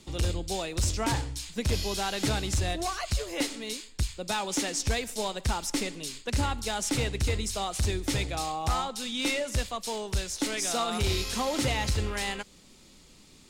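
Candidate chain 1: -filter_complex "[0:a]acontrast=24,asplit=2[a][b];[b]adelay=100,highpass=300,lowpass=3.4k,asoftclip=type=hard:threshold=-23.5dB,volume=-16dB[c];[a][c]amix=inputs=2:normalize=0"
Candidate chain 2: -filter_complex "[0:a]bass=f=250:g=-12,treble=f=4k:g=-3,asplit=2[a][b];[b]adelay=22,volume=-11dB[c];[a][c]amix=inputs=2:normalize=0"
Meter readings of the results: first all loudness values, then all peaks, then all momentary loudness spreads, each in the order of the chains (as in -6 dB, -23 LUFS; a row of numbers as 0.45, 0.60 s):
-25.0, -32.5 LUFS; -14.5, -17.5 dBFS; 5, 6 LU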